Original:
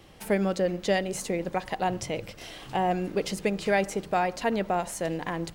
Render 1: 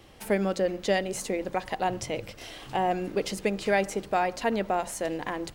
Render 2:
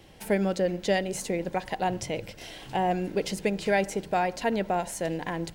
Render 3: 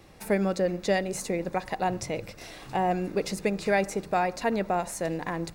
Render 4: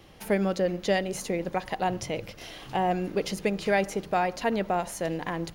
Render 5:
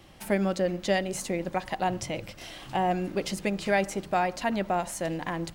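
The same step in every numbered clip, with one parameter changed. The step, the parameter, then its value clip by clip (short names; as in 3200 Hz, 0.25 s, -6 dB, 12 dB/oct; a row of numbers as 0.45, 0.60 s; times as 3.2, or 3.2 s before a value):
notch, frequency: 170, 1200, 3100, 8000, 450 Hz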